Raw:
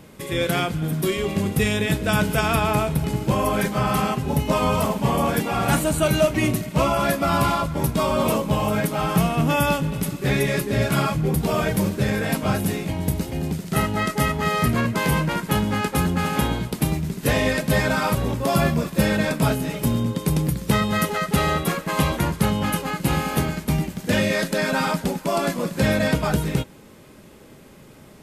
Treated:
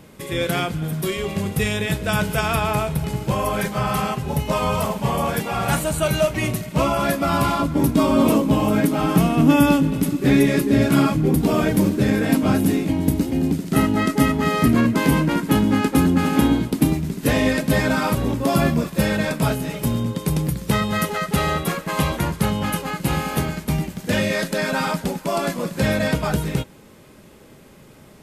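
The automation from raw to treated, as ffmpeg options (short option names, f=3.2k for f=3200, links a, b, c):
-af "asetnsamples=n=441:p=0,asendcmd='0.83 equalizer g -6.5;6.72 equalizer g 3;7.59 equalizer g 14;16.93 equalizer g 7;18.84 equalizer g -1',equalizer=f=280:t=o:w=0.57:g=0"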